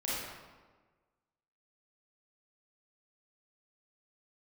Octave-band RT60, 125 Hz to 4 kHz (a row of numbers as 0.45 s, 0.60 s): 1.4 s, 1.5 s, 1.4 s, 1.3 s, 1.1 s, 0.90 s